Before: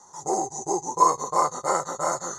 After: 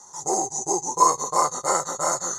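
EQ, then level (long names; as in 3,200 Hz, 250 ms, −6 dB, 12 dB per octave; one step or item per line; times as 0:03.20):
high-shelf EQ 3,300 Hz +8.5 dB
0.0 dB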